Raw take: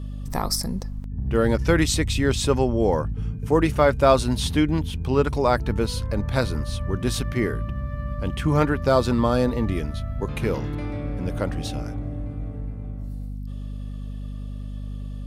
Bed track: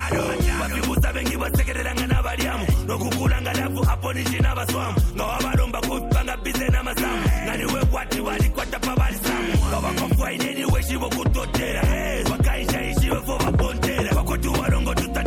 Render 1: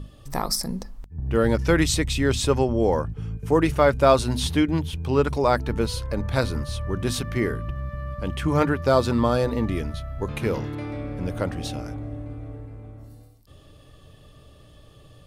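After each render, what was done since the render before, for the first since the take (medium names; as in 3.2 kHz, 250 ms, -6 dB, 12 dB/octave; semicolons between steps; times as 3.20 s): hum notches 50/100/150/200/250 Hz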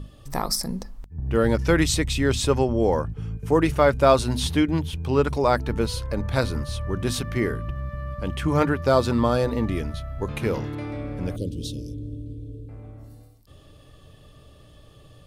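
11.36–12.69 s: elliptic band-stop 450–3300 Hz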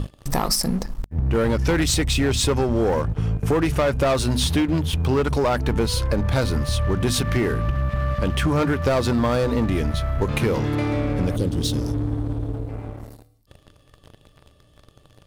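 waveshaping leveller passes 3; compression, threshold -18 dBFS, peak gain reduction 10 dB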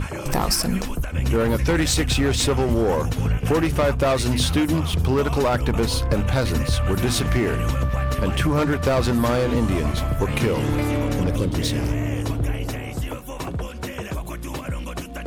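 add bed track -8.5 dB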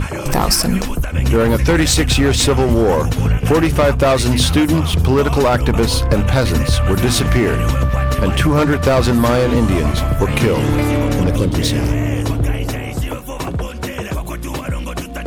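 trim +6.5 dB; peak limiter -2 dBFS, peak gain reduction 1.5 dB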